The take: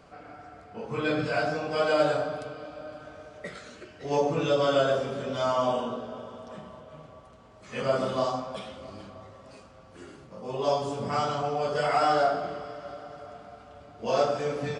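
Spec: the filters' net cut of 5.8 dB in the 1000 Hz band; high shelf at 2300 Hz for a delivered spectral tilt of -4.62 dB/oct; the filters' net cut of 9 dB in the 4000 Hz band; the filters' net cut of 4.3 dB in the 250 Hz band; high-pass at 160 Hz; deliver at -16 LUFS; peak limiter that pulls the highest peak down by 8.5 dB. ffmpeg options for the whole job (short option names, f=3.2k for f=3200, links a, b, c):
-af "highpass=160,equalizer=f=250:t=o:g=-4,equalizer=f=1k:t=o:g=-7,highshelf=f=2.3k:g=-7,equalizer=f=4k:t=o:g=-5,volume=18.5dB,alimiter=limit=-4.5dB:level=0:latency=1"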